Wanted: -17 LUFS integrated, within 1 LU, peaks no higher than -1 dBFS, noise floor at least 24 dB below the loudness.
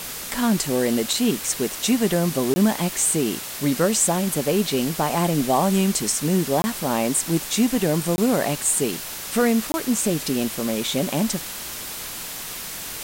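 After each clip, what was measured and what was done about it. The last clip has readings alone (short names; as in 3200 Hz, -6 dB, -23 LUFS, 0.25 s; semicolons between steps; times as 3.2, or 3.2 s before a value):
dropouts 4; longest dropout 20 ms; noise floor -33 dBFS; noise floor target -46 dBFS; loudness -22.0 LUFS; peak -6.5 dBFS; loudness target -17.0 LUFS
-> interpolate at 2.54/6.62/8.16/9.72, 20 ms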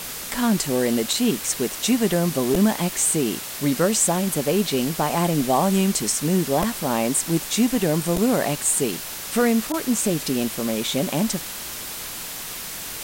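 dropouts 0; noise floor -33 dBFS; noise floor target -46 dBFS
-> denoiser 13 dB, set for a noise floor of -33 dBFS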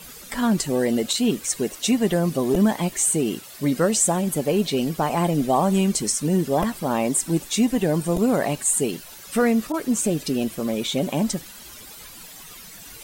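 noise floor -42 dBFS; noise floor target -46 dBFS
-> denoiser 6 dB, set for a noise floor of -42 dBFS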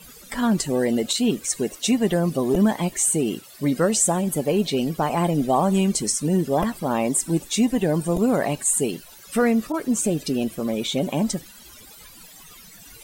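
noise floor -46 dBFS; loudness -22.0 LUFS; peak -8.0 dBFS; loudness target -17.0 LUFS
-> gain +5 dB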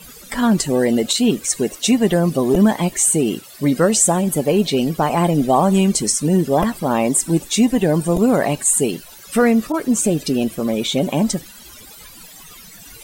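loudness -17.0 LUFS; peak -3.0 dBFS; noise floor -41 dBFS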